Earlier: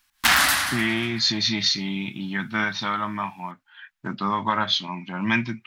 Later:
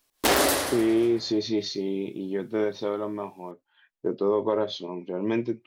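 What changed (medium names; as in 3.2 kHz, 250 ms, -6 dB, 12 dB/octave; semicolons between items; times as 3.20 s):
speech -7.5 dB; master: remove FFT filter 220 Hz 0 dB, 450 Hz -27 dB, 740 Hz -3 dB, 1.5 kHz +10 dB, 8.4 kHz +2 dB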